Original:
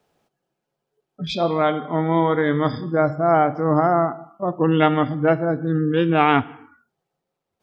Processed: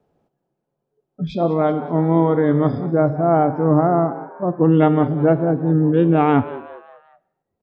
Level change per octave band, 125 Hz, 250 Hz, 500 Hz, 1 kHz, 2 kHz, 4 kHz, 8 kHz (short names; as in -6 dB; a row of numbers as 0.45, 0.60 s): +5.0 dB, +4.5 dB, +2.0 dB, -1.0 dB, -6.5 dB, under -10 dB, n/a